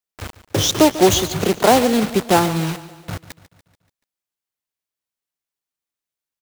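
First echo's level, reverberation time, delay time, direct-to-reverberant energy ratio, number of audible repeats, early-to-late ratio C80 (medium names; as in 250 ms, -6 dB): -16.0 dB, no reverb, 144 ms, no reverb, 4, no reverb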